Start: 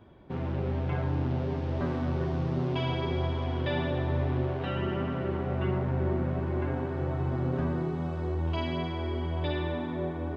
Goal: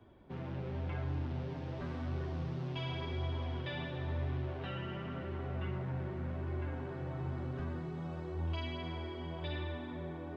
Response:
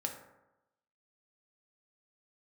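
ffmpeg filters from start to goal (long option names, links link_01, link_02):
-filter_complex "[0:a]flanger=delay=2.7:depth=3.8:regen=-63:speed=0.92:shape=sinusoidal,acrossover=split=130|1400[link_01][link_02][link_03];[link_02]alimiter=level_in=12dB:limit=-24dB:level=0:latency=1,volume=-12dB[link_04];[link_01][link_04][link_03]amix=inputs=3:normalize=0,volume=-1.5dB"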